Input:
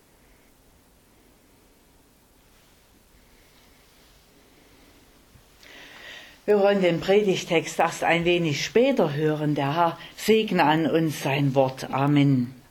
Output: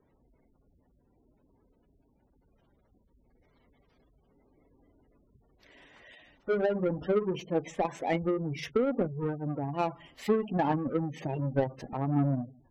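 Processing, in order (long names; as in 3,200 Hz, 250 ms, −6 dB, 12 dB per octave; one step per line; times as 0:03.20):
each half-wave held at its own peak
gate on every frequency bin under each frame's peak −15 dB strong
harmonic generator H 3 −20 dB, 7 −33 dB, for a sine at −6 dBFS
level −9 dB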